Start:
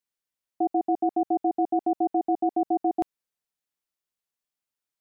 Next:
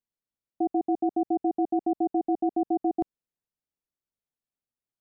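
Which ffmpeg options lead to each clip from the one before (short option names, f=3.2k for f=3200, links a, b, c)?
-af "tiltshelf=f=680:g=7.5,volume=-4dB"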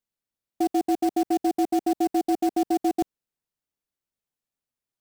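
-af "acrusher=bits=4:mode=log:mix=0:aa=0.000001,volume=2.5dB"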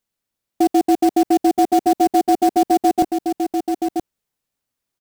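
-af "aecho=1:1:974:0.501,volume=8dB"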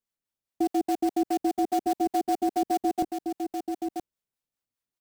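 -filter_complex "[0:a]acrossover=split=530[a][b];[a]aeval=exprs='val(0)*(1-0.5/2+0.5/2*cos(2*PI*4.9*n/s))':c=same[c];[b]aeval=exprs='val(0)*(1-0.5/2-0.5/2*cos(2*PI*4.9*n/s))':c=same[d];[c][d]amix=inputs=2:normalize=0,volume=-8dB"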